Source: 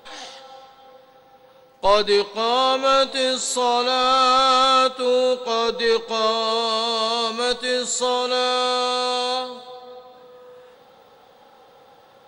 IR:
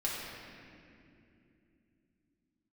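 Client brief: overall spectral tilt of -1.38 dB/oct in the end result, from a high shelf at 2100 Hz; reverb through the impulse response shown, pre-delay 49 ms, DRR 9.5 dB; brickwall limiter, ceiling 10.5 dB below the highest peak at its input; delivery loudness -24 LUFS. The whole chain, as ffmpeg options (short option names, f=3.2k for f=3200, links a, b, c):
-filter_complex "[0:a]highshelf=f=2.1k:g=-4,alimiter=limit=-16.5dB:level=0:latency=1,asplit=2[a][b];[1:a]atrim=start_sample=2205,adelay=49[c];[b][c]afir=irnorm=-1:irlink=0,volume=-15dB[d];[a][d]amix=inputs=2:normalize=0,volume=1dB"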